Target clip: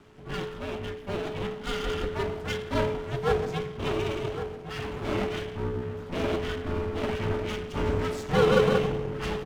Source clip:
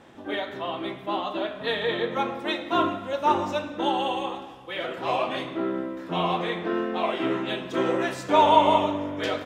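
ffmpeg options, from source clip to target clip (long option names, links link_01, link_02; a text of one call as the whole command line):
ffmpeg -i in.wav -filter_complex "[0:a]asplit=2[link_01][link_02];[link_02]adelay=1108,volume=-9dB,highshelf=frequency=4000:gain=-24.9[link_03];[link_01][link_03]amix=inputs=2:normalize=0,aeval=exprs='max(val(0),0)':channel_layout=same,afreqshift=-430" out.wav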